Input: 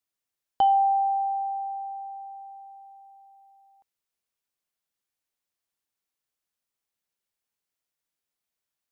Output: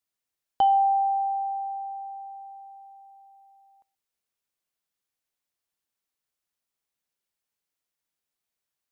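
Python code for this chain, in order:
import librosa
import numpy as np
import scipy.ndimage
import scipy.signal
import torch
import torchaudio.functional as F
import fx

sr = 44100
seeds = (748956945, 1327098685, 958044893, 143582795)

y = x + 10.0 ** (-24.0 / 20.0) * np.pad(x, (int(127 * sr / 1000.0), 0))[:len(x)]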